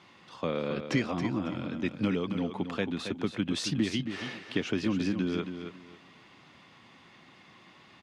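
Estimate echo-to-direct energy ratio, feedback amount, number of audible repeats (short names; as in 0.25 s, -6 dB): -8.5 dB, 23%, 3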